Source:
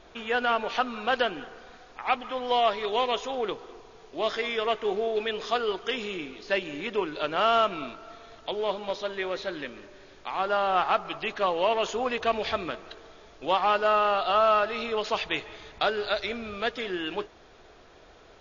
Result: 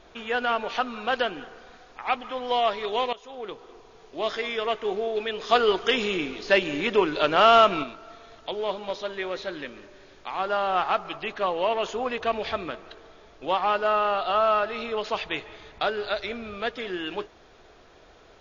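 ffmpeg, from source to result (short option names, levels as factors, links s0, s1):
-filter_complex "[0:a]asplit=3[s0][s1][s2];[s0]afade=t=out:st=5.49:d=0.02[s3];[s1]acontrast=84,afade=t=in:st=5.49:d=0.02,afade=t=out:st=7.82:d=0.02[s4];[s2]afade=t=in:st=7.82:d=0.02[s5];[s3][s4][s5]amix=inputs=3:normalize=0,asettb=1/sr,asplit=3[s6][s7][s8];[s6]atrim=end=11.164[s9];[s7]atrim=start=11.16:end=16.87,asetpts=PTS-STARTPTS,afade=t=in:d=0.004:c=qsin,afade=t=out:st=5.706:d=0.004:c=qsin,highshelf=f=5100:g=-6[s10];[s8]atrim=start=16.866[s11];[s9][s10]acrossfade=d=0.004:c1=hsin:c2=qsin[s12];[s12][s11]acrossfade=d=0.004:c1=qsin:c2=hsin,asplit=2[s13][s14];[s13]atrim=end=3.13,asetpts=PTS-STARTPTS,afade=t=out:st=3.126:d=0.004:c=hsin:silence=0.125893[s15];[s14]atrim=start=3.13,asetpts=PTS-STARTPTS,afade=t=in:d=1.15:c=qsin:silence=0.125893[s16];[s15][s16]concat=n=2:v=0:a=1"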